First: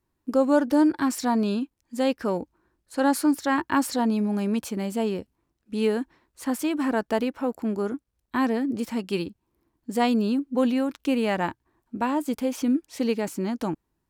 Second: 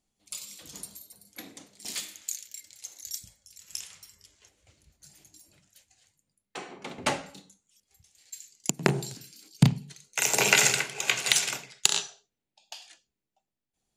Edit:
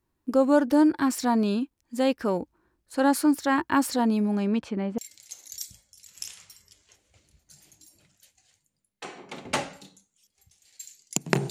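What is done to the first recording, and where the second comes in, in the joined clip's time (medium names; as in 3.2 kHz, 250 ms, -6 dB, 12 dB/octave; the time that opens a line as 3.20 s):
first
4.35–4.98 s: low-pass 7.5 kHz -> 1.5 kHz
4.98 s: go over to second from 2.51 s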